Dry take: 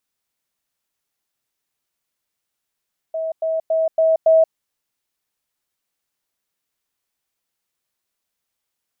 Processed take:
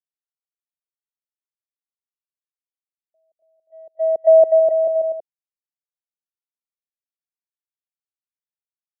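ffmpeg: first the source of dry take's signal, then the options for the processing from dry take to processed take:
-f lavfi -i "aevalsrc='pow(10,(-21+3*floor(t/0.28))/20)*sin(2*PI*645*t)*clip(min(mod(t,0.28),0.18-mod(t,0.28))/0.005,0,1)':d=1.4:s=44100"
-af "agate=range=-45dB:threshold=-15dB:ratio=16:detection=peak,lowshelf=f=600:t=q:w=1.5:g=10,aecho=1:1:250|437.5|578.1|683.6|762.7:0.631|0.398|0.251|0.158|0.1"

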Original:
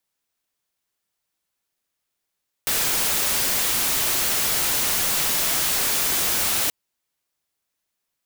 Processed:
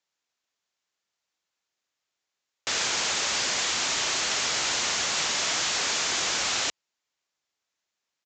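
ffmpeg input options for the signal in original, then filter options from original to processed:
-f lavfi -i "anoisesrc=c=white:a=0.138:d=4.03:r=44100:seed=1"
-af "highpass=46,lowshelf=f=300:g=-9.5,aresample=16000,aresample=44100"

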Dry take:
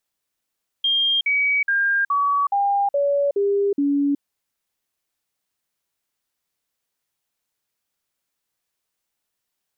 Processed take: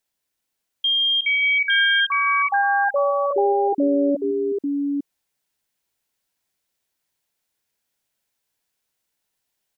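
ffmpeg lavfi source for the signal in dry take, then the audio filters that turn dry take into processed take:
-f lavfi -i "aevalsrc='0.15*clip(min(mod(t,0.42),0.37-mod(t,0.42))/0.005,0,1)*sin(2*PI*3210*pow(2,-floor(t/0.42)/2)*mod(t,0.42))':d=3.36:s=44100"
-filter_complex "[0:a]bandreject=f=1.2k:w=9,asplit=2[a][b];[b]aecho=0:1:94|163|374|857:0.251|0.224|0.251|0.668[c];[a][c]amix=inputs=2:normalize=0"

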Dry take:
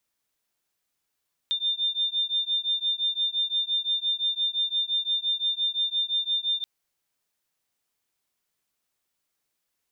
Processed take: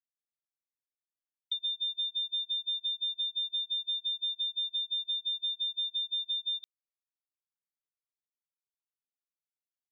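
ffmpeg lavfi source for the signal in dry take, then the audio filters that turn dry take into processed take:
-f lavfi -i "aevalsrc='0.0447*(sin(2*PI*3600*t)+sin(2*PI*3605.8*t))':d=5.13:s=44100"
-af "agate=range=-45dB:threshold=-28dB:ratio=16:detection=peak,acompressor=threshold=-31dB:ratio=6"

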